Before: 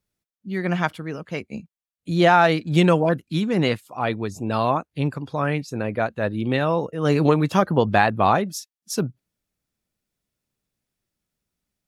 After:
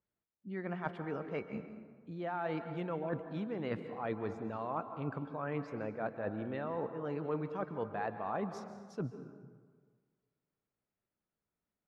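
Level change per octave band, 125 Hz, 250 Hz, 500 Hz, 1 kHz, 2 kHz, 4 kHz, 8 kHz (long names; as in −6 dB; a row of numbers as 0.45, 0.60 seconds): −19.0 dB, −17.0 dB, −16.0 dB, −18.5 dB, −20.0 dB, −27.0 dB, below −25 dB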